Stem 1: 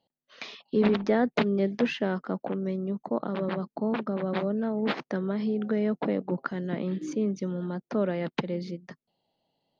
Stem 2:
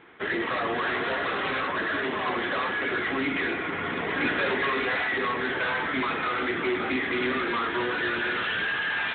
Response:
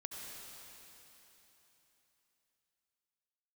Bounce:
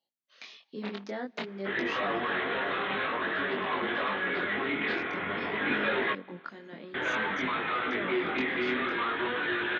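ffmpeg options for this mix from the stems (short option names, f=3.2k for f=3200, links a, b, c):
-filter_complex "[0:a]highpass=190,tiltshelf=f=1.4k:g=-4.5,volume=-6dB,asplit=2[a][b];[b]volume=-23dB[c];[1:a]lowshelf=f=86:g=-10,adelay=1450,volume=-0.5dB,asplit=3[d][e][f];[d]atrim=end=6.13,asetpts=PTS-STARTPTS,afade=t=out:st=6.126:d=0.004:c=hsin[g];[e]atrim=start=6.13:end=6.94,asetpts=PTS-STARTPTS,volume=0[h];[f]atrim=start=6.94,asetpts=PTS-STARTPTS,afade=t=in:d=0.004:c=hsin[i];[g][h][i]concat=n=3:v=0:a=1,asplit=2[j][k];[k]volume=-19dB[l];[2:a]atrim=start_sample=2205[m];[c][l]amix=inputs=2:normalize=0[n];[n][m]afir=irnorm=-1:irlink=0[o];[a][j][o]amix=inputs=3:normalize=0,flanger=delay=19.5:depth=5.2:speed=0.52"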